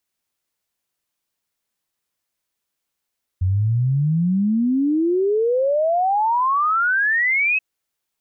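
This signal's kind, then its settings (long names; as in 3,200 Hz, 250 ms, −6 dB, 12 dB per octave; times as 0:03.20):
exponential sine sweep 89 Hz → 2,600 Hz 4.18 s −15.5 dBFS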